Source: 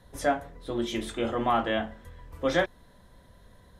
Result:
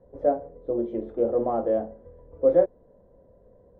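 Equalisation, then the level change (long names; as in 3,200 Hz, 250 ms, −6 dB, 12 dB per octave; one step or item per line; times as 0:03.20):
low-pass with resonance 510 Hz, resonance Q 3.6
low-shelf EQ 260 Hz −6 dB
0.0 dB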